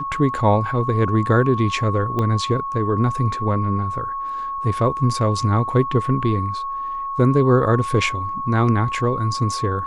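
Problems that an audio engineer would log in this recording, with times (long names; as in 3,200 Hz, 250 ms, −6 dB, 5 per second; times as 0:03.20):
whistle 1,100 Hz −24 dBFS
0:02.19: click −12 dBFS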